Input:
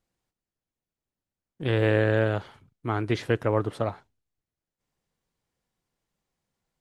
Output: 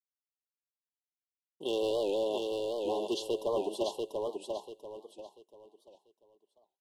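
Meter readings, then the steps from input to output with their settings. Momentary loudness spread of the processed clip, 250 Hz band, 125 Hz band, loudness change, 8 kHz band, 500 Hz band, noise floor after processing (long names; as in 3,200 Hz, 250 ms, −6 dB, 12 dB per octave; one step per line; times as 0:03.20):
16 LU, −8.0 dB, −28.5 dB, −7.5 dB, can't be measured, −3.5 dB, below −85 dBFS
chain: downward expander −44 dBFS
four-pole ladder high-pass 280 Hz, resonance 25%
high-shelf EQ 3,000 Hz +9.5 dB
comb filter 5.1 ms, depth 37%
hard clipping −25.5 dBFS, distortion −11 dB
linear-phase brick-wall band-stop 1,100–2,700 Hz
on a send: repeating echo 690 ms, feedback 30%, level −3.5 dB
on the sum: wow of a warped record 78 rpm, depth 160 cents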